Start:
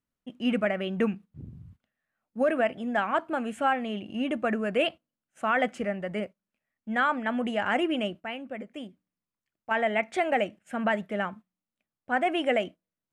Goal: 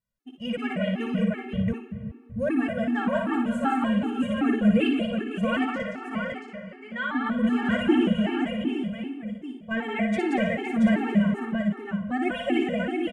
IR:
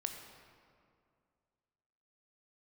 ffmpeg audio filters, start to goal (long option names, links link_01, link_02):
-filter_complex "[0:a]asettb=1/sr,asplit=3[link_01][link_02][link_03];[link_01]atrim=end=5.644[link_04];[link_02]atrim=start=5.64:end=7.15,asetpts=PTS-STARTPTS,afade=type=in:duration=0.004:curve=qsin,afade=type=out:start_time=1.506:duration=0.004:curve=qsin,acrossover=split=590 5900:gain=0.178 1 0.158[link_05][link_06][link_07];[link_05][link_06][link_07]amix=inputs=3:normalize=0[link_08];[link_03]atrim=start=7.146[link_09];[link_04][link_08]acrossfade=duration=0.004:curve1=hsin:curve2=qsin[link_10];[link_10][link_09]acrossfade=duration=0.004:curve1=qsin:curve2=hsin,aecho=1:1:176|318|513|679:0.596|0.15|0.224|0.596,asplit=2[link_11][link_12];[1:a]atrim=start_sample=2205,adelay=58[link_13];[link_12][link_13]afir=irnorm=-1:irlink=0,volume=-3.5dB[link_14];[link_11][link_14]amix=inputs=2:normalize=0,asubboost=boost=7.5:cutoff=240,afftfilt=real='re*gt(sin(2*PI*2.6*pts/sr)*(1-2*mod(floor(b*sr/1024/230),2)),0)':imag='im*gt(sin(2*PI*2.6*pts/sr)*(1-2*mod(floor(b*sr/1024/230),2)),0)':win_size=1024:overlap=0.75"